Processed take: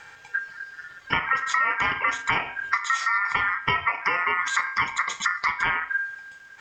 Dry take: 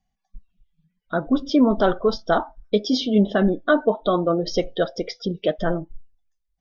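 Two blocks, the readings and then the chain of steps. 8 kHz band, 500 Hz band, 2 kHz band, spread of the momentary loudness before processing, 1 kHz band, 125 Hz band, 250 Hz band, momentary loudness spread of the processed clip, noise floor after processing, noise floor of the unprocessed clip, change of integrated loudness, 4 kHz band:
n/a, -20.5 dB, +10.0 dB, 8 LU, +3.5 dB, -12.5 dB, -24.5 dB, 11 LU, -47 dBFS, -77 dBFS, -2.0 dB, -2.0 dB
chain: per-bin compression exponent 0.6; dynamic EQ 3100 Hz, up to -5 dB, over -40 dBFS, Q 0.92; compressor 6:1, threshold -27 dBFS, peak gain reduction 15 dB; de-hum 103.1 Hz, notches 40; ring modulator 1600 Hz; gain +8.5 dB

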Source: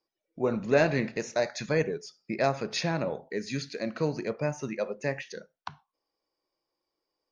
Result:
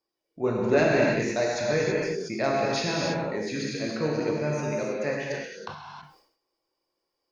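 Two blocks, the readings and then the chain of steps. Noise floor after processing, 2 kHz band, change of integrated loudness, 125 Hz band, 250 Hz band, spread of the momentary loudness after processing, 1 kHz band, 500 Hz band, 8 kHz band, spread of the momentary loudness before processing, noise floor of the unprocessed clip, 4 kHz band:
-82 dBFS, +4.0 dB, +3.5 dB, +2.0 dB, +4.0 dB, 11 LU, +3.5 dB, +3.5 dB, n/a, 14 LU, under -85 dBFS, +4.0 dB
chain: non-linear reverb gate 0.35 s flat, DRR -3.5 dB; sustainer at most 93 dB/s; gain -1.5 dB

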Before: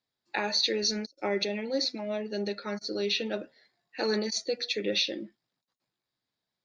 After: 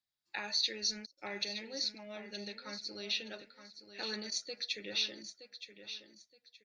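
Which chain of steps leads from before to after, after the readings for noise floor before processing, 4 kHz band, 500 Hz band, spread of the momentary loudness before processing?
under -85 dBFS, -5.0 dB, -16.0 dB, 10 LU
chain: bell 380 Hz -12.5 dB 2.9 oct; on a send: feedback echo 0.921 s, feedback 27%, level -11 dB; on the sum: gain -4.5 dB

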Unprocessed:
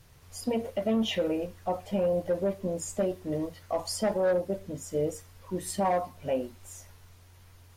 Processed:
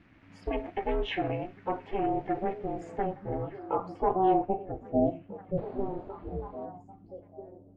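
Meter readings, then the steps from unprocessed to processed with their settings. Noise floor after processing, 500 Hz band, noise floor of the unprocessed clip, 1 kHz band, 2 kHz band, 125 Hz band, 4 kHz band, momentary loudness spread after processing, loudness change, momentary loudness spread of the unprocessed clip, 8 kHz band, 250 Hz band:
-56 dBFS, -3.0 dB, -55 dBFS, +4.5 dB, -1.0 dB, -0.5 dB, n/a, 16 LU, -1.5 dB, 10 LU, under -30 dB, -1.0 dB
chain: painted sound noise, 5.57–6.66, 380–4700 Hz -29 dBFS; low-pass sweep 2100 Hz -> 200 Hz, 2.7–6.44; ring modulator 190 Hz; on a send: delay with a stepping band-pass 0.797 s, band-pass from 170 Hz, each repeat 1.4 oct, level -8 dB

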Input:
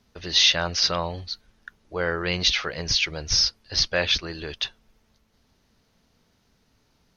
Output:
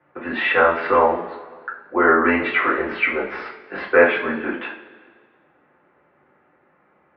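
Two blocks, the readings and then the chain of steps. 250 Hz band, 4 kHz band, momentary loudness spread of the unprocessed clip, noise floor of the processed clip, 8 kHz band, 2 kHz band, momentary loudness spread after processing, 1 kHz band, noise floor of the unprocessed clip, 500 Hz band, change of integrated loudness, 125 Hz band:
+11.5 dB, -16.0 dB, 15 LU, -61 dBFS, under -40 dB, +9.0 dB, 18 LU, +14.0 dB, -67 dBFS, +12.0 dB, +3.5 dB, -8.0 dB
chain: two-slope reverb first 0.35 s, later 1.7 s, from -17 dB, DRR -6 dB; mistuned SSB -99 Hz 350–2100 Hz; gain +6.5 dB

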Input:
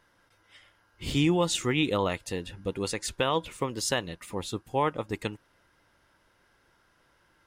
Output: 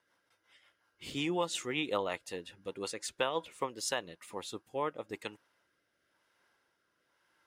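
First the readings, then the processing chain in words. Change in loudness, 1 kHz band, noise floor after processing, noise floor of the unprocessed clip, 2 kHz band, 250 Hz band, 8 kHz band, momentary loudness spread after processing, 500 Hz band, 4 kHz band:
-7.5 dB, -6.5 dB, -79 dBFS, -67 dBFS, -6.0 dB, -10.5 dB, -6.5 dB, 11 LU, -6.5 dB, -6.5 dB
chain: HPF 430 Hz 6 dB/oct; dynamic EQ 800 Hz, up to +5 dB, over -40 dBFS, Q 0.75; rotary speaker horn 5.5 Hz, later 1 Hz, at 3.36; gain -5 dB

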